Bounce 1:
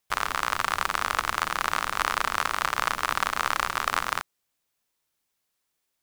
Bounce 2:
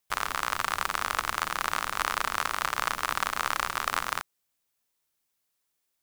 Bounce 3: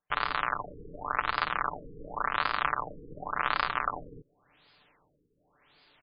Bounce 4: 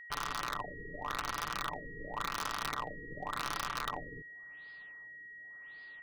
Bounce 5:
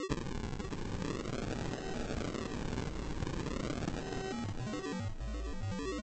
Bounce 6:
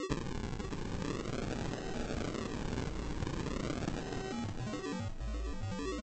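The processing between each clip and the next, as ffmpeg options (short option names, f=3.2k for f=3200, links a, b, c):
-af "highshelf=f=7.2k:g=4.5,volume=-3dB"
-af "aecho=1:1:6.8:0.47,areverse,acompressor=mode=upward:threshold=-33dB:ratio=2.5,areverse,afftfilt=real='re*lt(b*sr/1024,480*pow(5100/480,0.5+0.5*sin(2*PI*0.9*pts/sr)))':imag='im*lt(b*sr/1024,480*pow(5100/480,0.5+0.5*sin(2*PI*0.9*pts/sr)))':win_size=1024:overlap=0.75"
-af "aeval=exprs='(mod(6.31*val(0)+1,2)-1)/6.31':c=same,aeval=exprs='val(0)+0.00501*sin(2*PI*1900*n/s)':c=same,asoftclip=type=hard:threshold=-28dB,volume=-1.5dB"
-af "acompressor=threshold=-47dB:ratio=6,aresample=16000,acrusher=samples=20:mix=1:aa=0.000001:lfo=1:lforange=12:lforate=0.42,aresample=44100,aecho=1:1:609|1218|1827|2436:0.447|0.143|0.0457|0.0146,volume=12dB"
-filter_complex "[0:a]asplit=2[a][b];[b]adelay=35,volume=-13dB[c];[a][c]amix=inputs=2:normalize=0"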